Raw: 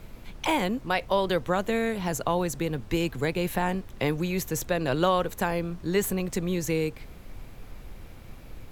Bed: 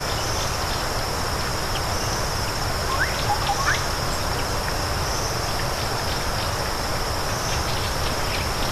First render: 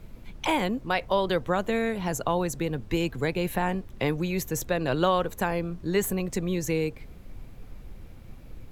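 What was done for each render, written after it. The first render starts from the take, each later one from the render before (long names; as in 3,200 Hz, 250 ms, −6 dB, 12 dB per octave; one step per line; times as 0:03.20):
broadband denoise 6 dB, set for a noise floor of −46 dBFS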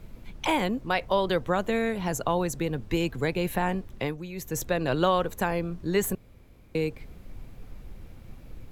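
0:03.93–0:04.60: duck −9.5 dB, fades 0.25 s
0:06.15–0:06.75: fill with room tone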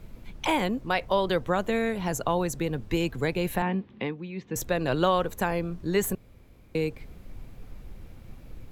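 0:03.62–0:04.56: loudspeaker in its box 160–3,600 Hz, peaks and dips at 210 Hz +8 dB, 630 Hz −8 dB, 1,400 Hz −5 dB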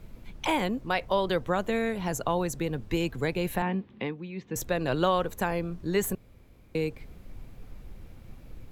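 level −1.5 dB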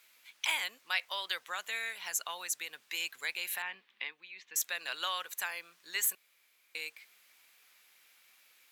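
Chebyshev high-pass filter 2,000 Hz, order 2
high-shelf EQ 4,200 Hz +6 dB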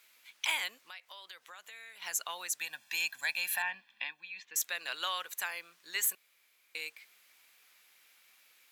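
0:00.82–0:02.02: downward compressor 2.5 to 1, threshold −52 dBFS
0:02.60–0:04.45: comb filter 1.2 ms, depth 100%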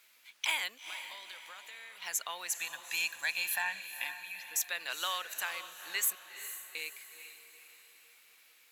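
feedback delay with all-pass diffusion 453 ms, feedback 48%, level −10.5 dB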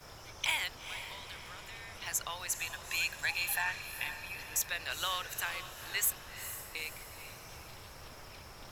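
mix in bed −26.5 dB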